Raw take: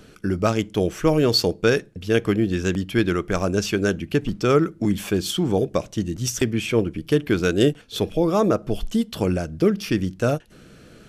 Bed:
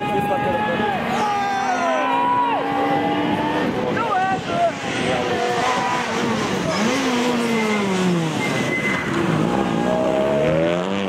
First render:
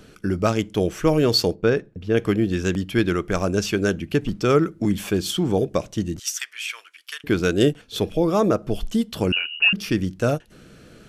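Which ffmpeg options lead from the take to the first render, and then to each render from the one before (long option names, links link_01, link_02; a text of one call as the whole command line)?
ffmpeg -i in.wav -filter_complex "[0:a]asplit=3[link_01][link_02][link_03];[link_01]afade=type=out:start_time=1.54:duration=0.02[link_04];[link_02]lowpass=frequency=1400:poles=1,afade=type=in:start_time=1.54:duration=0.02,afade=type=out:start_time=2.16:duration=0.02[link_05];[link_03]afade=type=in:start_time=2.16:duration=0.02[link_06];[link_04][link_05][link_06]amix=inputs=3:normalize=0,asettb=1/sr,asplit=3[link_07][link_08][link_09];[link_07]atrim=end=6.194[link_10];[link_08]atrim=start=6.19:end=7.24,asetpts=PTS-STARTPTS,afade=type=in:duration=0.004:curve=qsin,afade=type=out:start_time=1.046:duration=0.004:curve=qsin,highpass=frequency=1300:width=0.5412,highpass=frequency=1300:width=1.3066[link_11];[link_09]atrim=start=7.236[link_12];[link_10][link_11]acrossfade=duration=0.004:curve1=hsin:curve2=qsin[link_13];[link_13][link_12]acrossfade=duration=0.004:curve1=qsin:curve2=hsin,asettb=1/sr,asplit=3[link_14][link_15][link_16];[link_14]atrim=end=9.324[link_17];[link_15]atrim=start=9.32:end=9.73,asetpts=PTS-STARTPTS,afade=type=in:duration=0.004:curve=qsin,afade=type=out:start_time=0.406:duration=0.004:curve=qsin,lowpass=frequency=2600:width_type=q:width=0.5098,lowpass=frequency=2600:width_type=q:width=0.6013,lowpass=frequency=2600:width_type=q:width=0.9,lowpass=frequency=2600:width_type=q:width=2.563,afreqshift=-3000[link_18];[link_16]atrim=start=9.726[link_19];[link_17][link_18]acrossfade=duration=0.004:curve1=hsin:curve2=qsin[link_20];[link_20][link_19]acrossfade=duration=0.004:curve1=qsin:curve2=hsin" out.wav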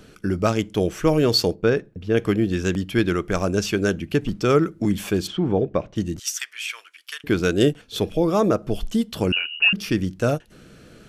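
ffmpeg -i in.wav -filter_complex "[0:a]asplit=3[link_01][link_02][link_03];[link_01]afade=type=out:start_time=5.26:duration=0.02[link_04];[link_02]lowpass=2300,afade=type=in:start_time=5.26:duration=0.02,afade=type=out:start_time=5.95:duration=0.02[link_05];[link_03]afade=type=in:start_time=5.95:duration=0.02[link_06];[link_04][link_05][link_06]amix=inputs=3:normalize=0" out.wav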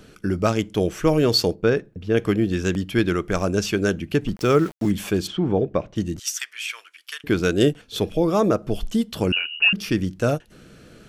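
ffmpeg -i in.wav -filter_complex "[0:a]asettb=1/sr,asplit=3[link_01][link_02][link_03];[link_01]atrim=end=4.364[link_04];[link_02]atrim=start=4.36:end=4.91,asetpts=PTS-STARTPTS,afade=type=in:duration=0.004:curve=qsin,afade=type=out:start_time=0.546:duration=0.004:curve=qsin,aeval=exprs='val(0)*gte(abs(val(0)),0.0178)':channel_layout=same[link_05];[link_03]atrim=start=4.906[link_06];[link_04][link_05]acrossfade=duration=0.004:curve1=hsin:curve2=qsin[link_07];[link_07][link_06]acrossfade=duration=0.004:curve1=qsin:curve2=hsin" out.wav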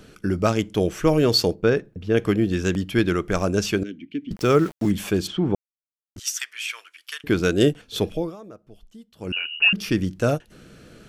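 ffmpeg -i in.wav -filter_complex "[0:a]asettb=1/sr,asplit=3[link_01][link_02][link_03];[link_01]atrim=end=3.834[link_04];[link_02]atrim=start=3.83:end=4.31,asetpts=PTS-STARTPTS,afade=type=in:duration=0.004:curve=qsin,afade=type=out:start_time=0.476:duration=0.004:curve=qsin,asplit=3[link_05][link_06][link_07];[link_05]bandpass=frequency=270:width_type=q:width=8,volume=0dB[link_08];[link_06]bandpass=frequency=2290:width_type=q:width=8,volume=-6dB[link_09];[link_07]bandpass=frequency=3010:width_type=q:width=8,volume=-9dB[link_10];[link_08][link_09][link_10]amix=inputs=3:normalize=0[link_11];[link_03]atrim=start=4.306[link_12];[link_04][link_11]acrossfade=duration=0.004:curve1=hsin:curve2=qsin[link_13];[link_13][link_12]acrossfade=duration=0.004:curve1=qsin:curve2=hsin,asplit=5[link_14][link_15][link_16][link_17][link_18];[link_14]atrim=end=5.55,asetpts=PTS-STARTPTS,afade=type=out:start_time=5.546:duration=0.004:curve=hsin[link_19];[link_15]atrim=start=5.55:end=6.16,asetpts=PTS-STARTPTS,volume=0[link_20];[link_16]atrim=start=6.16:end=8.36,asetpts=PTS-STARTPTS,afade=type=in:duration=0.004:curve=hsin,afade=type=out:start_time=1.89:duration=0.31:silence=0.0707946[link_21];[link_17]atrim=start=8.36:end=9.18,asetpts=PTS-STARTPTS,volume=-23dB[link_22];[link_18]atrim=start=9.18,asetpts=PTS-STARTPTS,afade=type=in:duration=0.31:silence=0.0707946[link_23];[link_19][link_20][link_21][link_22][link_23]concat=n=5:v=0:a=1" out.wav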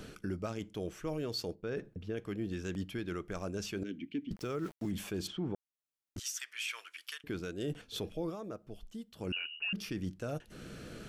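ffmpeg -i in.wav -af "areverse,acompressor=threshold=-29dB:ratio=6,areverse,alimiter=level_in=4dB:limit=-24dB:level=0:latency=1:release=322,volume=-4dB" out.wav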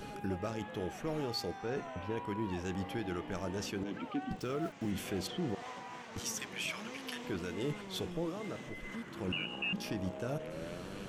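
ffmpeg -i in.wav -i bed.wav -filter_complex "[1:a]volume=-26dB[link_01];[0:a][link_01]amix=inputs=2:normalize=0" out.wav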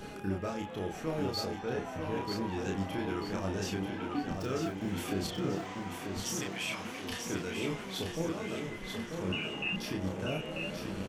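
ffmpeg -i in.wav -filter_complex "[0:a]asplit=2[link_01][link_02];[link_02]adelay=31,volume=-2.5dB[link_03];[link_01][link_03]amix=inputs=2:normalize=0,aecho=1:1:939|1878|2817|3756|4695:0.531|0.239|0.108|0.0484|0.0218" out.wav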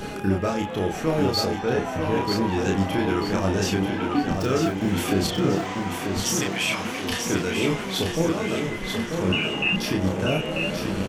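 ffmpeg -i in.wav -af "volume=11.5dB" out.wav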